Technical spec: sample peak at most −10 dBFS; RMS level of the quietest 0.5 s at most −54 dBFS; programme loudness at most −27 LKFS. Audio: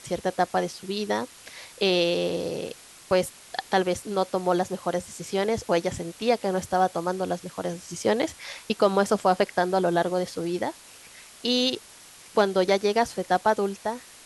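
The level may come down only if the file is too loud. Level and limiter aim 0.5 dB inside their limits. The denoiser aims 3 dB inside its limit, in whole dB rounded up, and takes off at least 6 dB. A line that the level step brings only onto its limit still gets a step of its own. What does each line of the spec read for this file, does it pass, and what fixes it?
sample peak −7.0 dBFS: out of spec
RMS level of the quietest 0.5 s −49 dBFS: out of spec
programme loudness −26.0 LKFS: out of spec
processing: broadband denoise 7 dB, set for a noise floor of −49 dBFS
level −1.5 dB
brickwall limiter −10.5 dBFS

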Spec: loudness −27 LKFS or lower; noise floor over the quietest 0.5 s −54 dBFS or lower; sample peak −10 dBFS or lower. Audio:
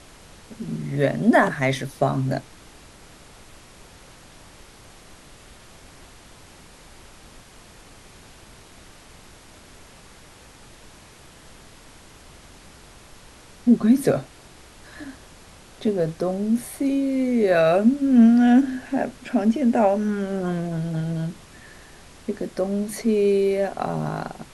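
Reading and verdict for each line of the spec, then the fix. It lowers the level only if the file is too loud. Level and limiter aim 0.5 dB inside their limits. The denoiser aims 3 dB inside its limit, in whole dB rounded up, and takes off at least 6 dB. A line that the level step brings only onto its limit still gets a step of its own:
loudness −21.5 LKFS: out of spec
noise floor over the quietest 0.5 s −47 dBFS: out of spec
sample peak −6.0 dBFS: out of spec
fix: broadband denoise 6 dB, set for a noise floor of −47 dBFS
level −6 dB

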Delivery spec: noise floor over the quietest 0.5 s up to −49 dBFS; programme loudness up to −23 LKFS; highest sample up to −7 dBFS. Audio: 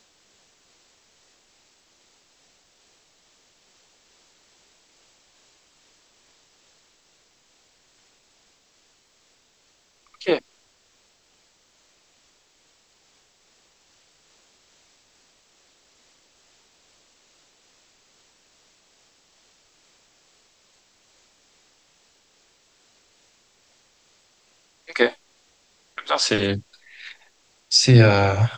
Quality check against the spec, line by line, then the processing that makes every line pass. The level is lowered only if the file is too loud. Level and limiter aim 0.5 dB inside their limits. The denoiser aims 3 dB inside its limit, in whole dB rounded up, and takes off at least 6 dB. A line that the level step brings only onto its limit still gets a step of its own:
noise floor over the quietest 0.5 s −62 dBFS: in spec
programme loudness −19.5 LKFS: out of spec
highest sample −4.0 dBFS: out of spec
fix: level −4 dB

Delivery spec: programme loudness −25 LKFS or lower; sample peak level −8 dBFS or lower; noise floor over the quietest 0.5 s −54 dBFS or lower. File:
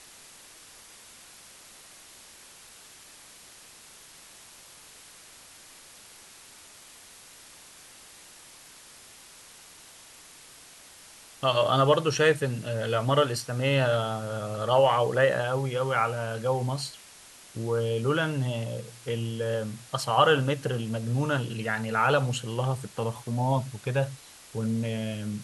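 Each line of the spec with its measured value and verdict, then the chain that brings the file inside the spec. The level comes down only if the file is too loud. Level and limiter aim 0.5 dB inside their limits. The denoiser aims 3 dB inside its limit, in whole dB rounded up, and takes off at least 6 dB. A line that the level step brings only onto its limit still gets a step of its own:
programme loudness −27.0 LKFS: in spec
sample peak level −9.0 dBFS: in spec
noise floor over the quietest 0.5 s −51 dBFS: out of spec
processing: broadband denoise 6 dB, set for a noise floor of −51 dBFS

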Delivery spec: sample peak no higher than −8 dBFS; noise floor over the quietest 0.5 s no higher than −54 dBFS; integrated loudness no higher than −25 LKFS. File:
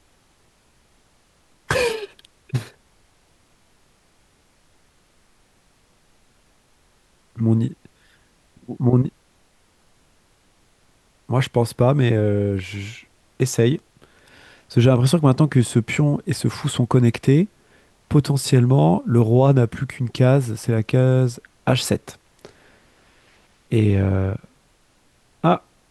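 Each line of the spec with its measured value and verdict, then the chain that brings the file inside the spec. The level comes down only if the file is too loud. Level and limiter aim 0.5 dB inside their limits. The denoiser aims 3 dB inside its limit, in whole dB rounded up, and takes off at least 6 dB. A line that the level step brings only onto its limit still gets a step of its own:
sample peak −4.0 dBFS: out of spec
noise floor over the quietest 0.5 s −59 dBFS: in spec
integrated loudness −19.5 LKFS: out of spec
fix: level −6 dB

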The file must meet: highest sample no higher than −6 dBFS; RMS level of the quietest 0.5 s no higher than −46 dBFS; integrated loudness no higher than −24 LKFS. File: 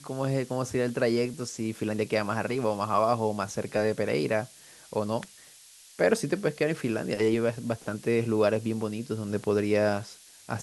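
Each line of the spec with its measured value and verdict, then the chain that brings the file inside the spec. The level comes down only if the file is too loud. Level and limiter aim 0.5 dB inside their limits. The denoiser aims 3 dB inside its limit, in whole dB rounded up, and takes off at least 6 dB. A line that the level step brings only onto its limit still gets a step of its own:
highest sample −9.0 dBFS: in spec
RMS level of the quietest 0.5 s −53 dBFS: in spec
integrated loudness −28.5 LKFS: in spec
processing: no processing needed

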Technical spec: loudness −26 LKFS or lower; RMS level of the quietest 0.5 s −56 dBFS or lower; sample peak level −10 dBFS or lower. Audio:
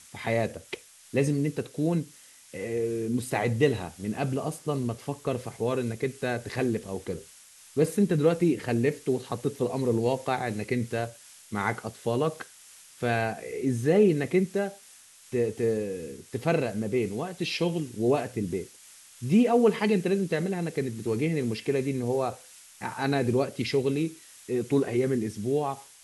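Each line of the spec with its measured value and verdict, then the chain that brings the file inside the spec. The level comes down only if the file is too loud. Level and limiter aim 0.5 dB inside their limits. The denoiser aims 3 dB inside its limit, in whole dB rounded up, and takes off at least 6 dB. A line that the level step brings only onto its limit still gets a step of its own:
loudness −28.0 LKFS: in spec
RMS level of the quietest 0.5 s −53 dBFS: out of spec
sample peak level −9.0 dBFS: out of spec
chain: broadband denoise 6 dB, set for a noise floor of −53 dBFS
brickwall limiter −10.5 dBFS

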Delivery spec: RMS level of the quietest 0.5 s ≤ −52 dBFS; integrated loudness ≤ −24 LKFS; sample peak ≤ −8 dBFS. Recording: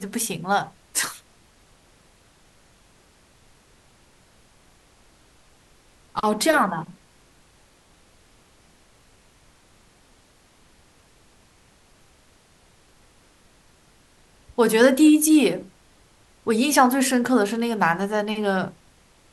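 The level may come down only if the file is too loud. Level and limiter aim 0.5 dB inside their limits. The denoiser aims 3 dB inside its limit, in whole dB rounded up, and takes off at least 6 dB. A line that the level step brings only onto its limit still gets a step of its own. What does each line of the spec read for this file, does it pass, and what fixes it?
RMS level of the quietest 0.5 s −57 dBFS: in spec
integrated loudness −21.0 LKFS: out of spec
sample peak −4.5 dBFS: out of spec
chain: level −3.5 dB
brickwall limiter −8.5 dBFS

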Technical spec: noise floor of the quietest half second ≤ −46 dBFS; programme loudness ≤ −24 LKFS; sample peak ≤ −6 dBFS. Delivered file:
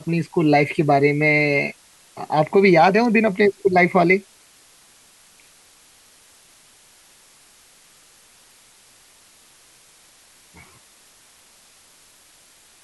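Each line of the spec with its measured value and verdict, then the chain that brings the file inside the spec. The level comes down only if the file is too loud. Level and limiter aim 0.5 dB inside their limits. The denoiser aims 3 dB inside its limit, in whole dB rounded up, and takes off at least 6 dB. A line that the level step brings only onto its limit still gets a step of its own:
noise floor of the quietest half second −52 dBFS: in spec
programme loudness −17.0 LKFS: out of spec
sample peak −5.0 dBFS: out of spec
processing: level −7.5 dB

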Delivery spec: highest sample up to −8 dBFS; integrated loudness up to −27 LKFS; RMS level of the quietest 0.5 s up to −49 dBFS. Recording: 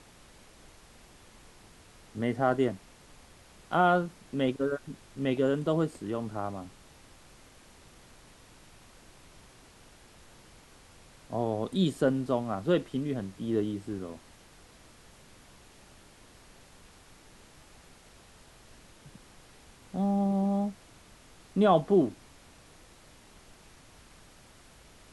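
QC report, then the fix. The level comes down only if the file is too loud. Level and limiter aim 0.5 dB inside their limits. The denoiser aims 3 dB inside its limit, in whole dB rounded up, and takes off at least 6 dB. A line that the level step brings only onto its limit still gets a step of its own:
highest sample −11.5 dBFS: in spec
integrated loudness −29.5 LKFS: in spec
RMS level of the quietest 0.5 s −55 dBFS: in spec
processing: no processing needed

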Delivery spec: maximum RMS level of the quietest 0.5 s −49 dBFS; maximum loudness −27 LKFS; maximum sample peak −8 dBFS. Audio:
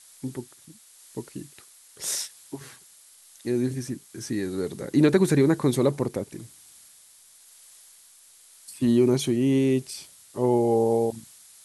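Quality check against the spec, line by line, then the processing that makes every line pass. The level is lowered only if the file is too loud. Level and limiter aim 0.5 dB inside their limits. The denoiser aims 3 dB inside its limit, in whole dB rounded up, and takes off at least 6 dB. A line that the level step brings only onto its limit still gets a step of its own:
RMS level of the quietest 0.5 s −54 dBFS: in spec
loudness −24.5 LKFS: out of spec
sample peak −7.0 dBFS: out of spec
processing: level −3 dB

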